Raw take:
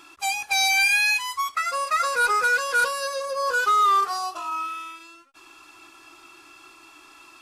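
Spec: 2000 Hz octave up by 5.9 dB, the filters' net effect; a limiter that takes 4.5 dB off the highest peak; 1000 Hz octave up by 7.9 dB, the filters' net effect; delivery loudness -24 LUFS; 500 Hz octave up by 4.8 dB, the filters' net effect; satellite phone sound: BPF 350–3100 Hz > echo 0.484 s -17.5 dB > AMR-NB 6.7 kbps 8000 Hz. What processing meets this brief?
bell 500 Hz +4 dB; bell 1000 Hz +7.5 dB; bell 2000 Hz +6 dB; limiter -10.5 dBFS; BPF 350–3100 Hz; echo 0.484 s -17.5 dB; gain -5.5 dB; AMR-NB 6.7 kbps 8000 Hz

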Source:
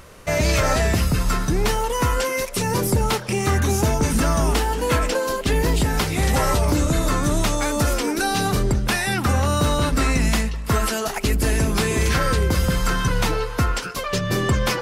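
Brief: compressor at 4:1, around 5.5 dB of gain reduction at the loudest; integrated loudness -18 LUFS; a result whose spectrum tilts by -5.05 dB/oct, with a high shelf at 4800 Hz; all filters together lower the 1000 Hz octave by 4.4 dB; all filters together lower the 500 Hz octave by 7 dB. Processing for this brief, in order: bell 500 Hz -8 dB; bell 1000 Hz -3 dB; high shelf 4800 Hz -8.5 dB; compressor 4:1, threshold -23 dBFS; gain +9.5 dB

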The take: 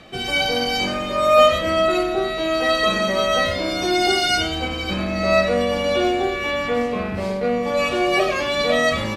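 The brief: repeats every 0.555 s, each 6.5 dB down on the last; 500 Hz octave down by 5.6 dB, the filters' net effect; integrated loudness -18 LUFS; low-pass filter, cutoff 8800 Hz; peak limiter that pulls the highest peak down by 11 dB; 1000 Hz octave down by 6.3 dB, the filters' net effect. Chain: LPF 8800 Hz; bell 500 Hz -4.5 dB; bell 1000 Hz -8 dB; limiter -18.5 dBFS; feedback echo 0.555 s, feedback 47%, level -6.5 dB; gain +7.5 dB

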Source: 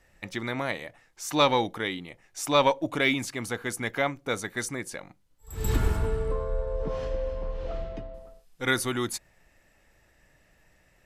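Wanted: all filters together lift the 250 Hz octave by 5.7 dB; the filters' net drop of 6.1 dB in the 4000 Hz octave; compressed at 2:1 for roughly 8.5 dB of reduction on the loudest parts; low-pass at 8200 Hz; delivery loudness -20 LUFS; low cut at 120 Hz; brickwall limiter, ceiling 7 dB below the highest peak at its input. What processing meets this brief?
HPF 120 Hz; LPF 8200 Hz; bell 250 Hz +7 dB; bell 4000 Hz -7 dB; compressor 2:1, threshold -31 dBFS; gain +15.5 dB; limiter -7 dBFS

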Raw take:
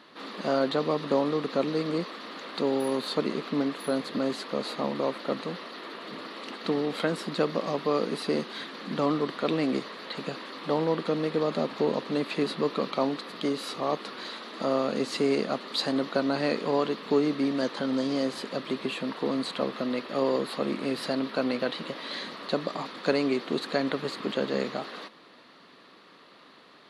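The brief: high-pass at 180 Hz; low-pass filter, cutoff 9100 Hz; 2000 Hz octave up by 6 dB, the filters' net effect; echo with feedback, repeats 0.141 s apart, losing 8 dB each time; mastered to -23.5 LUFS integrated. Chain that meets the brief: HPF 180 Hz; LPF 9100 Hz; bell 2000 Hz +7.5 dB; feedback echo 0.141 s, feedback 40%, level -8 dB; gain +4.5 dB

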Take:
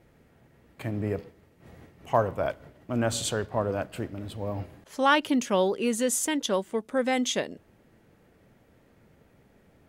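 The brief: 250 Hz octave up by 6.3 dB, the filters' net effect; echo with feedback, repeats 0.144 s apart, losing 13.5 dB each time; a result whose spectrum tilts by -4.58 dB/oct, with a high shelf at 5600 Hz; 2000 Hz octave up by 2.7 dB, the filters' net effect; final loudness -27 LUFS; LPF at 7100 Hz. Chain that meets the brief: LPF 7100 Hz; bell 250 Hz +7 dB; bell 2000 Hz +4.5 dB; high shelf 5600 Hz -8 dB; feedback echo 0.144 s, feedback 21%, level -13.5 dB; gain -2 dB

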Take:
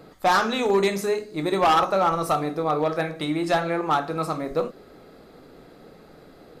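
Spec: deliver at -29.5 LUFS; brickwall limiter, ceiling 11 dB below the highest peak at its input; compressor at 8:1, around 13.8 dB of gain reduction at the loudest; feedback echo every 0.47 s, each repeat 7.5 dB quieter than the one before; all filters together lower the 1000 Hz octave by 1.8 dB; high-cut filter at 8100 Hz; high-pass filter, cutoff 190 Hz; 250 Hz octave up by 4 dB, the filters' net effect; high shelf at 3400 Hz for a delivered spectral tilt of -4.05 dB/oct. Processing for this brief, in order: HPF 190 Hz; LPF 8100 Hz; bell 250 Hz +7.5 dB; bell 1000 Hz -3.5 dB; high shelf 3400 Hz +4 dB; compressor 8:1, threshold -30 dBFS; limiter -26 dBFS; feedback echo 0.47 s, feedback 42%, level -7.5 dB; gain +6 dB

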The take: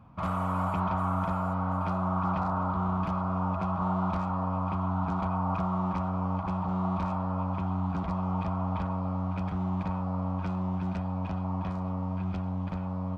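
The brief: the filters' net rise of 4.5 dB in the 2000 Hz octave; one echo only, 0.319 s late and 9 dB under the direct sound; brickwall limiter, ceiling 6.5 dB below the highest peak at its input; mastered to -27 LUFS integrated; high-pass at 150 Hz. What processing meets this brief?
HPF 150 Hz; bell 2000 Hz +7 dB; limiter -24.5 dBFS; echo 0.319 s -9 dB; gain +6 dB

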